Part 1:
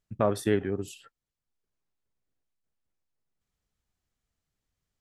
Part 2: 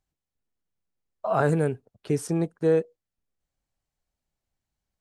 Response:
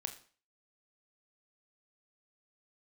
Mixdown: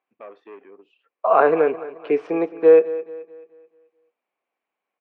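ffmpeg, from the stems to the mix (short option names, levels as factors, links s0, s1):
-filter_complex "[0:a]asoftclip=type=tanh:threshold=0.0794,volume=0.188[s0];[1:a]volume=1.26,asplit=3[s1][s2][s3];[s2]volume=0.376[s4];[s3]volume=0.2[s5];[2:a]atrim=start_sample=2205[s6];[s4][s6]afir=irnorm=-1:irlink=0[s7];[s5]aecho=0:1:216|432|648|864|1080|1296:1|0.41|0.168|0.0689|0.0283|0.0116[s8];[s0][s1][s7][s8]amix=inputs=4:normalize=0,highpass=f=290:w=0.5412,highpass=f=290:w=1.3066,equalizer=f=480:t=q:w=4:g=6,equalizer=f=720:t=q:w=4:g=4,equalizer=f=1100:t=q:w=4:g=9,equalizer=f=2400:t=q:w=4:g=9,lowpass=f=2900:w=0.5412,lowpass=f=2900:w=1.3066"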